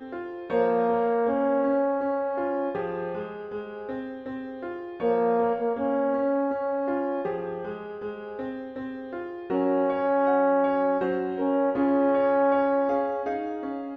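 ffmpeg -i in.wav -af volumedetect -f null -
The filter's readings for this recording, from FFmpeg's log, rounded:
mean_volume: -25.9 dB
max_volume: -11.5 dB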